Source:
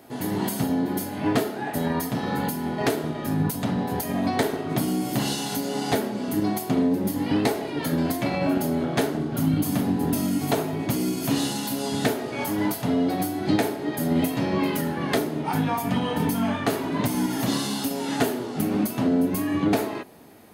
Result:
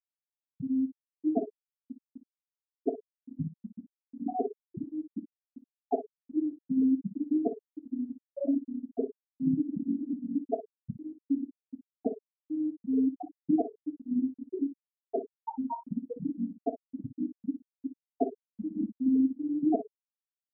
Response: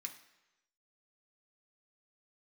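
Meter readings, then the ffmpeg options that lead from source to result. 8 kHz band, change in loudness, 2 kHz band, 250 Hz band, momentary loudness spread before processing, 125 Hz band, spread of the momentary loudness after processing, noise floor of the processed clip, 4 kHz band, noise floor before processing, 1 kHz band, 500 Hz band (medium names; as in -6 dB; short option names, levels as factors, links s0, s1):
under -40 dB, -8.0 dB, under -40 dB, -6.5 dB, 4 LU, -18.0 dB, 14 LU, under -85 dBFS, under -40 dB, -33 dBFS, -12.5 dB, -10.0 dB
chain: -af "bass=f=250:g=-6,treble=f=4000:g=-8,afftfilt=real='re*gte(hypot(re,im),0.447)':imag='im*gte(hypot(re,im),0.447)':win_size=1024:overlap=0.75,aecho=1:1:26|57:0.15|0.251"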